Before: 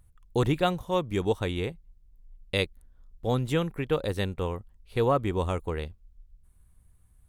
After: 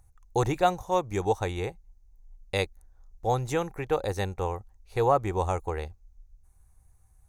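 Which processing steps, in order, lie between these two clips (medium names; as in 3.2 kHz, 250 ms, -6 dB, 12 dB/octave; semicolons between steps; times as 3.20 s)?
graphic EQ with 31 bands 160 Hz -8 dB, 250 Hz -11 dB, 800 Hz +11 dB, 3.15 kHz -10 dB, 6.3 kHz +11 dB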